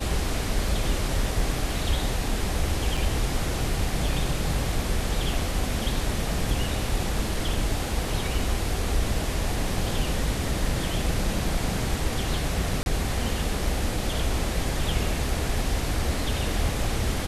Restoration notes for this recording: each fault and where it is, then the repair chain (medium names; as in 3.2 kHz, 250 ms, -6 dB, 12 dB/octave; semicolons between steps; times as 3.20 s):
2.97 s: dropout 4.3 ms
12.83–12.86 s: dropout 31 ms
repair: interpolate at 2.97 s, 4.3 ms; interpolate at 12.83 s, 31 ms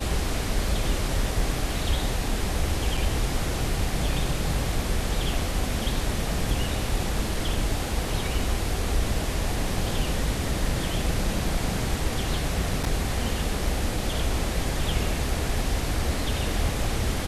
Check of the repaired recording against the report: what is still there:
nothing left